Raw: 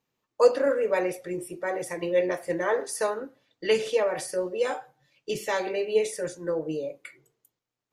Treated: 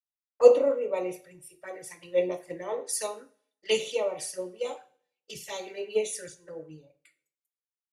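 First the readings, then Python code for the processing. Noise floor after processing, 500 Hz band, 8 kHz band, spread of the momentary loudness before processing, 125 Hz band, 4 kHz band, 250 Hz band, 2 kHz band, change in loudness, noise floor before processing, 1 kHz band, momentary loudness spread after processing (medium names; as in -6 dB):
under -85 dBFS, -1.5 dB, +1.5 dB, 12 LU, -8.0 dB, +0.5 dB, -6.5 dB, -8.5 dB, -0.5 dB, -85 dBFS, -6.5 dB, 23 LU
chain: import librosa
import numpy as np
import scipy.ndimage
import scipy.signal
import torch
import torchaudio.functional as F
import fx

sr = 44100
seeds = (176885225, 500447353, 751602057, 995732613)

y = scipy.signal.sosfilt(scipy.signal.butter(2, 49.0, 'highpass', fs=sr, output='sos'), x)
y = fx.tilt_shelf(y, sr, db=-3.5, hz=820.0)
y = fx.env_flanger(y, sr, rest_ms=6.4, full_db=-25.0)
y = fx.rev_double_slope(y, sr, seeds[0], early_s=0.55, late_s=1.8, knee_db=-18, drr_db=9.5)
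y = fx.band_widen(y, sr, depth_pct=100)
y = y * librosa.db_to_amplitude(-4.0)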